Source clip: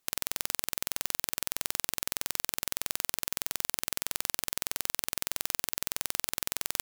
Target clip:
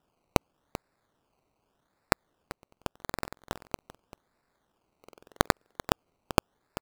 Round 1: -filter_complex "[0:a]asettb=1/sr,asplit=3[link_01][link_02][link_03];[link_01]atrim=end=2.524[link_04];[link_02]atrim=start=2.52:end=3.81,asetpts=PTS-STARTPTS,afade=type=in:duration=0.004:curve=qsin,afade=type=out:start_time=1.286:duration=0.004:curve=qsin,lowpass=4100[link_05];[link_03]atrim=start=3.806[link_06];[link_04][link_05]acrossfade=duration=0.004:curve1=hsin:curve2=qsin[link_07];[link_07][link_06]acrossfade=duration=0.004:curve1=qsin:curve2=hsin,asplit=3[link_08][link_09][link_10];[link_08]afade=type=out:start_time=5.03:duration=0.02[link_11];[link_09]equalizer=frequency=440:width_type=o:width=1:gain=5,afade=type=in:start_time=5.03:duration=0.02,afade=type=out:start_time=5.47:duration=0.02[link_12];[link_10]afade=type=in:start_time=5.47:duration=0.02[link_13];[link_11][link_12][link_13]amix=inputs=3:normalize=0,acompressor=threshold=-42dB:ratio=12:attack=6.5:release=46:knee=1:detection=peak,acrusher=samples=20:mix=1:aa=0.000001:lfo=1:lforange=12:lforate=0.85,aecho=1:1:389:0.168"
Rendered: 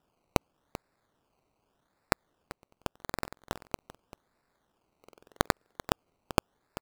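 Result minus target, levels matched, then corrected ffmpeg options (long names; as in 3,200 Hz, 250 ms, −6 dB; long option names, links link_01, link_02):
downward compressor: peak gain reduction +3 dB
-filter_complex "[0:a]asettb=1/sr,asplit=3[link_01][link_02][link_03];[link_01]atrim=end=2.524[link_04];[link_02]atrim=start=2.52:end=3.81,asetpts=PTS-STARTPTS,afade=type=in:duration=0.004:curve=qsin,afade=type=out:start_time=1.286:duration=0.004:curve=qsin,lowpass=4100[link_05];[link_03]atrim=start=3.806[link_06];[link_04][link_05]acrossfade=duration=0.004:curve1=hsin:curve2=qsin[link_07];[link_07][link_06]acrossfade=duration=0.004:curve1=qsin:curve2=hsin,asplit=3[link_08][link_09][link_10];[link_08]afade=type=out:start_time=5.03:duration=0.02[link_11];[link_09]equalizer=frequency=440:width_type=o:width=1:gain=5,afade=type=in:start_time=5.03:duration=0.02,afade=type=out:start_time=5.47:duration=0.02[link_12];[link_10]afade=type=in:start_time=5.47:duration=0.02[link_13];[link_11][link_12][link_13]amix=inputs=3:normalize=0,acrusher=samples=20:mix=1:aa=0.000001:lfo=1:lforange=12:lforate=0.85,aecho=1:1:389:0.168"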